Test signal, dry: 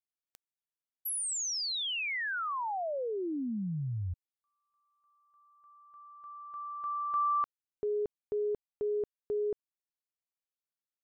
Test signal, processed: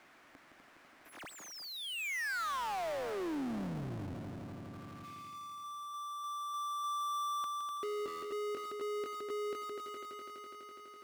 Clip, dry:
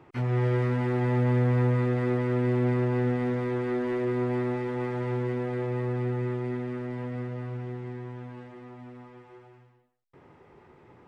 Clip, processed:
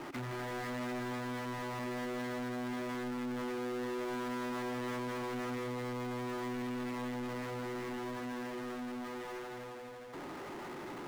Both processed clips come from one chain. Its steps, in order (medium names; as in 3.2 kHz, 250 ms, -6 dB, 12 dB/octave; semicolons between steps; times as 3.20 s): peak limiter -24 dBFS; overload inside the chain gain 33.5 dB; cabinet simulation 260–2100 Hz, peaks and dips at 280 Hz +3 dB, 460 Hz -8 dB, 900 Hz -3 dB; on a send: multi-head delay 83 ms, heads second and third, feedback 57%, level -12.5 dB; on the sum: power-law waveshaper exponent 0.35; trim -4.5 dB